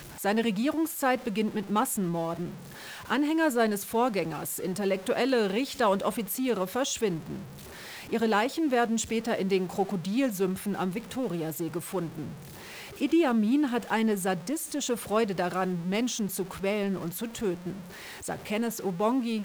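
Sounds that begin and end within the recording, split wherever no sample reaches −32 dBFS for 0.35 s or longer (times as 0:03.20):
0:03.10–0:07.38
0:08.12–0:12.27
0:13.01–0:17.73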